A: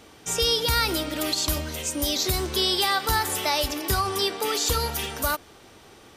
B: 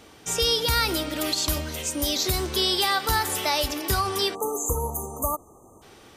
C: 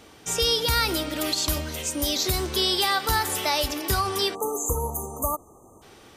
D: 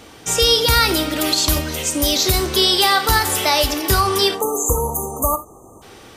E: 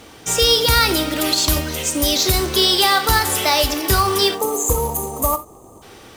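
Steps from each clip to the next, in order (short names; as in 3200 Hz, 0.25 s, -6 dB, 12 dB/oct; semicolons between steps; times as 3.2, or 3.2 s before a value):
spectral delete 4.35–5.82, 1300–6100 Hz
nothing audible
non-linear reverb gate 0.1 s flat, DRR 10 dB; gain +7.5 dB
short-mantissa float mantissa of 2-bit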